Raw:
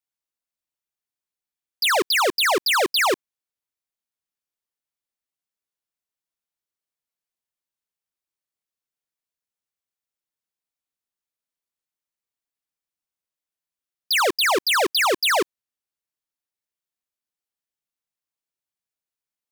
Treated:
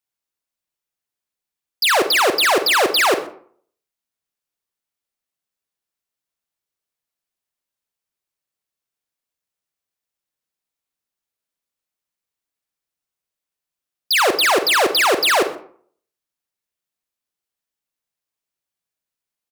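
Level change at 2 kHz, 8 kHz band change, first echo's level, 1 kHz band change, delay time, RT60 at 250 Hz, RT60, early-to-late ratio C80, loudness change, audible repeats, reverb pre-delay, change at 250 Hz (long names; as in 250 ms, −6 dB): +4.0 dB, +3.5 dB, −22.0 dB, +4.0 dB, 127 ms, 0.55 s, 0.55 s, 14.5 dB, +4.0 dB, 1, 35 ms, +4.0 dB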